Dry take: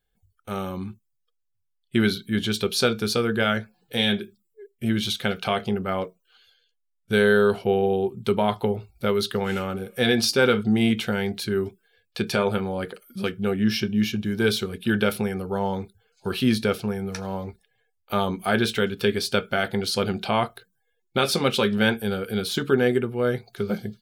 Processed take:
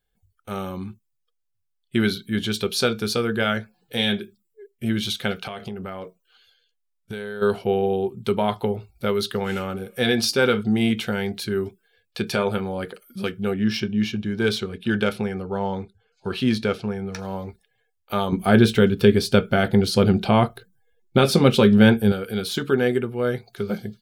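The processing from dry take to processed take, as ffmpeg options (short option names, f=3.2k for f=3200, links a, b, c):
-filter_complex "[0:a]asplit=3[a][b][c];[a]afade=t=out:st=5.41:d=0.02[d];[b]acompressor=threshold=-28dB:ratio=10:attack=3.2:release=140:knee=1:detection=peak,afade=t=in:st=5.41:d=0.02,afade=t=out:st=7.41:d=0.02[e];[c]afade=t=in:st=7.41:d=0.02[f];[d][e][f]amix=inputs=3:normalize=0,asettb=1/sr,asplit=3[g][h][i];[g]atrim=end=13.544[j];[h]atrim=start=13.54:end=17.19,asetpts=PTS-STARTPTS,afade=t=in:d=0.004:c=qsin,afade=t=out:st=3.646:d=0.004:c=qsin,adynamicsmooth=sensitivity=3:basefreq=6.1k[k];[i]atrim=start=17.186[l];[j][k]acrossfade=d=0.004:c1=hsin:c2=qsin[m];[m][l]acrossfade=d=0.004:c1=qsin:c2=hsin,asettb=1/sr,asplit=3[n][o][p];[n]atrim=end=18.324[q];[o]atrim=start=18.32:end=22.12,asetpts=PTS-STARTPTS,afade=t=in:d=0.004:c=qsin,afade=t=out:st=3.796:d=0.004:c=qsin,lowshelf=f=470:g=11.5[r];[p]atrim=start=22.116[s];[q][r]acrossfade=d=0.004:c1=hsin:c2=qsin[t];[t][s]acrossfade=d=0.004:c1=qsin:c2=hsin"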